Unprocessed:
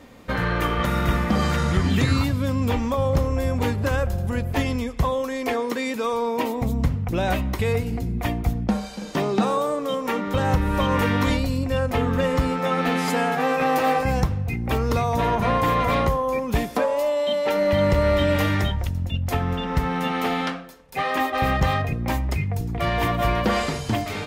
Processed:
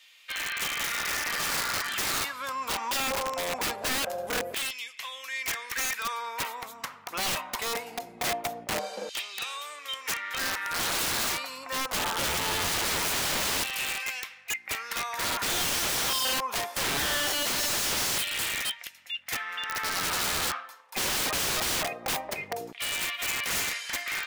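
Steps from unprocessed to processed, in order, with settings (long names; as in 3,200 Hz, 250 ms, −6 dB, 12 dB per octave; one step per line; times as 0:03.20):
auto-filter high-pass saw down 0.22 Hz 500–3,000 Hz
wrap-around overflow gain 21.5 dB
level −2 dB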